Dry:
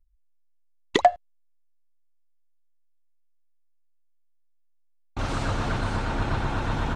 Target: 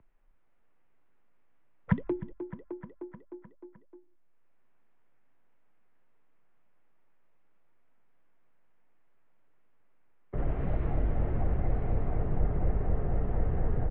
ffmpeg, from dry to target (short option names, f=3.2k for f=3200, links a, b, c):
-filter_complex "[0:a]acrossover=split=110[a][b];[b]acompressor=mode=upward:threshold=-50dB:ratio=2.5[c];[a][c]amix=inputs=2:normalize=0,lowpass=f=4.7k:w=0.5412,lowpass=f=4.7k:w=1.3066,highshelf=f=2.6k:g=-9.5,aecho=1:1:153|306|459|612|765|918:0.178|0.105|0.0619|0.0365|0.0215|0.0127,asetrate=22050,aresample=44100,acrossover=split=180|3000[d][e][f];[e]acompressor=threshold=-38dB:ratio=4[g];[d][g][f]amix=inputs=3:normalize=0"